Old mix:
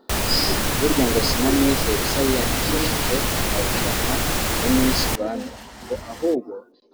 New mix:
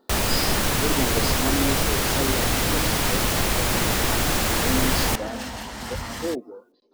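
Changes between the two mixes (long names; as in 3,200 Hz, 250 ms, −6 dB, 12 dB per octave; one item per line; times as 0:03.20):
speech −7.0 dB
second sound +6.0 dB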